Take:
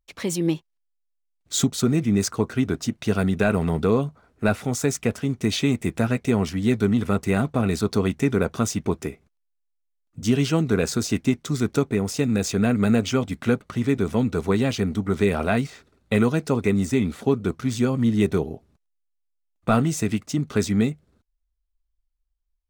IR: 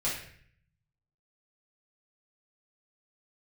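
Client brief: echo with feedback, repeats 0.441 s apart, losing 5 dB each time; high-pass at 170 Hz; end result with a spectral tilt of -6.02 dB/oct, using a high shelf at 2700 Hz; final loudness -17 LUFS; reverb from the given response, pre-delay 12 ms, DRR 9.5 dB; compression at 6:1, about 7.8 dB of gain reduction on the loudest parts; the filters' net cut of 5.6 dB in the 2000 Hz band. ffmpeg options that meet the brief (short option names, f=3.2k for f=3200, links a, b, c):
-filter_complex "[0:a]highpass=170,equalizer=f=2k:t=o:g=-4.5,highshelf=f=2.7k:g=-7.5,acompressor=threshold=-25dB:ratio=6,aecho=1:1:441|882|1323|1764|2205|2646|3087:0.562|0.315|0.176|0.0988|0.0553|0.031|0.0173,asplit=2[a][b];[1:a]atrim=start_sample=2205,adelay=12[c];[b][c]afir=irnorm=-1:irlink=0,volume=-16.5dB[d];[a][d]amix=inputs=2:normalize=0,volume=12.5dB"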